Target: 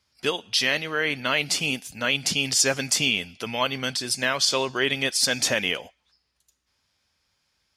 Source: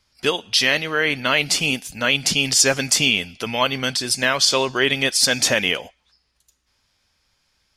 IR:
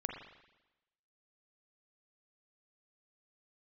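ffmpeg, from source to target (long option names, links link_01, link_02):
-af "highpass=57,volume=-5dB"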